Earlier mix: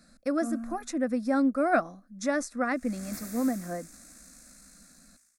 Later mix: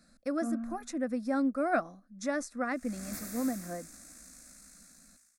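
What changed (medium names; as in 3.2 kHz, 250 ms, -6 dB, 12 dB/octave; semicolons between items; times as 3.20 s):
speech -4.5 dB; first sound: add distance through air 270 m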